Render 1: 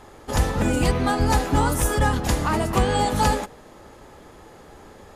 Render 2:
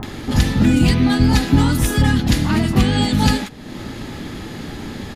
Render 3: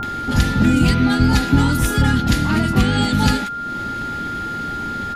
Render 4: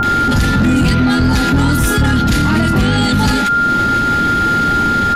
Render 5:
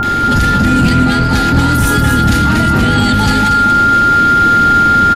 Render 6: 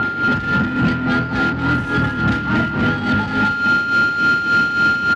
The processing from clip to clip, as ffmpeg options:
ffmpeg -i in.wav -filter_complex "[0:a]acompressor=mode=upward:threshold=-22dB:ratio=2.5,equalizer=frequency=125:width_type=o:width=1:gain=6,equalizer=frequency=250:width_type=o:width=1:gain=9,equalizer=frequency=500:width_type=o:width=1:gain=-8,equalizer=frequency=1000:width_type=o:width=1:gain=-3,equalizer=frequency=2000:width_type=o:width=1:gain=3,equalizer=frequency=4000:width_type=o:width=1:gain=7,equalizer=frequency=8000:width_type=o:width=1:gain=-4,acrossover=split=1100[link_01][link_02];[link_02]adelay=30[link_03];[link_01][link_03]amix=inputs=2:normalize=0,volume=2.5dB" out.wav
ffmpeg -i in.wav -af "aeval=exprs='val(0)+0.0708*sin(2*PI*1400*n/s)':channel_layout=same,volume=-1dB" out.wav
ffmpeg -i in.wav -filter_complex "[0:a]asplit=2[link_01][link_02];[link_02]acontrast=84,volume=-3dB[link_03];[link_01][link_03]amix=inputs=2:normalize=0,asoftclip=type=tanh:threshold=0dB,alimiter=level_in=11.5dB:limit=-1dB:release=50:level=0:latency=1,volume=-5.5dB" out.wav
ffmpeg -i in.wav -af "aecho=1:1:235|470|705|940|1175:0.531|0.239|0.108|0.0484|0.0218" out.wav
ffmpeg -i in.wav -af "highpass=110,lowpass=2600,asoftclip=type=tanh:threshold=-8.5dB,tremolo=f=3.5:d=0.62,volume=-1dB" out.wav

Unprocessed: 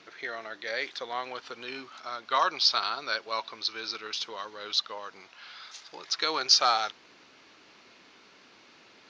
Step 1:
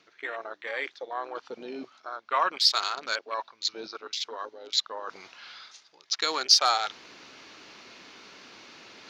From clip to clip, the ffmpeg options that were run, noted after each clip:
ffmpeg -i in.wav -af "afwtdn=0.0158,highshelf=frequency=5700:gain=5,areverse,acompressor=mode=upward:threshold=-30dB:ratio=2.5,areverse" out.wav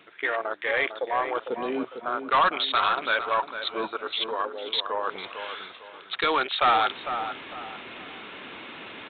ffmpeg -i in.wav -filter_complex "[0:a]aresample=8000,asoftclip=type=tanh:threshold=-24dB,aresample=44100,asplit=2[link_01][link_02];[link_02]adelay=452,lowpass=frequency=1800:poles=1,volume=-8dB,asplit=2[link_03][link_04];[link_04]adelay=452,lowpass=frequency=1800:poles=1,volume=0.37,asplit=2[link_05][link_06];[link_06]adelay=452,lowpass=frequency=1800:poles=1,volume=0.37,asplit=2[link_07][link_08];[link_08]adelay=452,lowpass=frequency=1800:poles=1,volume=0.37[link_09];[link_01][link_03][link_05][link_07][link_09]amix=inputs=5:normalize=0,volume=9dB" out.wav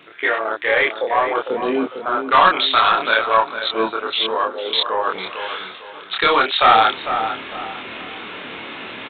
ffmpeg -i in.wav -filter_complex "[0:a]asplit=2[link_01][link_02];[link_02]adelay=27,volume=-2dB[link_03];[link_01][link_03]amix=inputs=2:normalize=0,volume=6.5dB" out.wav

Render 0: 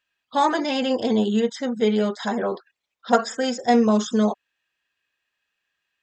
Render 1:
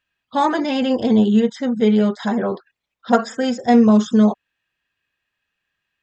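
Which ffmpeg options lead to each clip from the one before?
ffmpeg -i in.wav -af "bass=frequency=250:gain=9,treble=frequency=4000:gain=-5,volume=1.5dB" out.wav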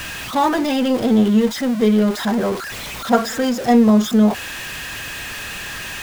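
ffmpeg -i in.wav -filter_complex "[0:a]aeval=exprs='val(0)+0.5*0.075*sgn(val(0))':channel_layout=same,acrossover=split=170[link_01][link_02];[link_01]acompressor=mode=upward:threshold=-34dB:ratio=2.5[link_03];[link_03][link_02]amix=inputs=2:normalize=0,volume=-1dB" out.wav

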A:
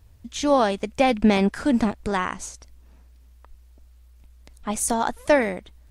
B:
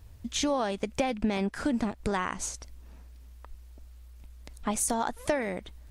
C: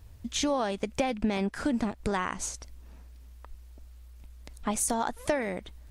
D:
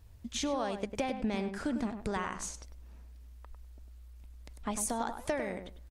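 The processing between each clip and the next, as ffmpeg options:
ffmpeg -i in.wav -af "acompressor=threshold=-28dB:ratio=5,volume=2dB" out.wav
ffmpeg -i in.wav -af anull out.wav
ffmpeg -i in.wav -filter_complex "[0:a]asplit=2[link_01][link_02];[link_02]adelay=100,lowpass=frequency=1600:poles=1,volume=-7dB,asplit=2[link_03][link_04];[link_04]adelay=100,lowpass=frequency=1600:poles=1,volume=0.18,asplit=2[link_05][link_06];[link_06]adelay=100,lowpass=frequency=1600:poles=1,volume=0.18[link_07];[link_01][link_03][link_05][link_07]amix=inputs=4:normalize=0,volume=-5.5dB" out.wav

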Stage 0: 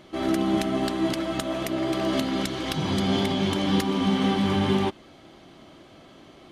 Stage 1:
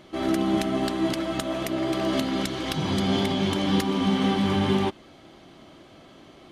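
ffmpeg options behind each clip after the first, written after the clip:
ffmpeg -i in.wav -af anull out.wav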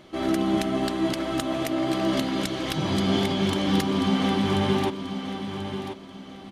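ffmpeg -i in.wav -af "aecho=1:1:1036|2072|3108:0.355|0.103|0.0298" out.wav

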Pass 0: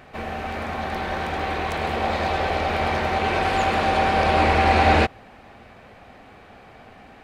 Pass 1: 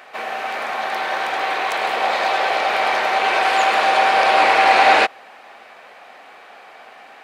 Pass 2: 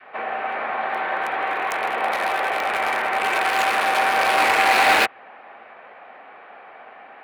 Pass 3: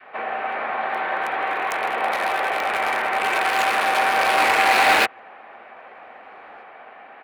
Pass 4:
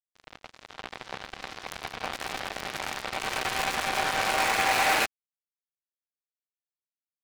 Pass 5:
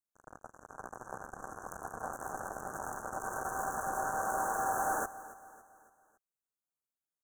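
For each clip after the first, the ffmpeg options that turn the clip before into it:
ffmpeg -i in.wav -af "highpass=650,volume=7dB" out.wav
ffmpeg -i in.wav -filter_complex "[0:a]adynamicequalizer=threshold=0.0501:dfrequency=630:dqfactor=0.96:tfrequency=630:tqfactor=0.96:attack=5:release=100:ratio=0.375:range=3:mode=cutabove:tftype=bell,acrossover=split=100|980|2700[link_01][link_02][link_03][link_04];[link_04]acrusher=bits=3:mix=0:aa=0.5[link_05];[link_01][link_02][link_03][link_05]amix=inputs=4:normalize=0" out.wav
ffmpeg -i in.wav -filter_complex "[0:a]asplit=2[link_01][link_02];[link_02]adelay=1574,volume=-28dB,highshelf=frequency=4000:gain=-35.4[link_03];[link_01][link_03]amix=inputs=2:normalize=0" out.wav
ffmpeg -i in.wav -af "acrusher=bits=2:mix=0:aa=0.5,volume=-8dB" out.wav
ffmpeg -i in.wav -af "asoftclip=type=tanh:threshold=-26dB,asuperstop=centerf=3200:order=20:qfactor=0.71,aecho=1:1:279|558|837|1116:0.15|0.0703|0.0331|0.0155" out.wav

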